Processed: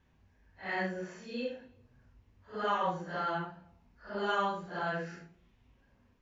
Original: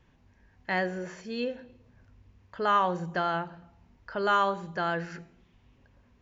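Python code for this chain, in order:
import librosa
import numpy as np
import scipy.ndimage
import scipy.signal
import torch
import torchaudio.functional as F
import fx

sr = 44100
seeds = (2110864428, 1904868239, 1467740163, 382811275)

y = fx.phase_scramble(x, sr, seeds[0], window_ms=200)
y = y * librosa.db_to_amplitude(-5.0)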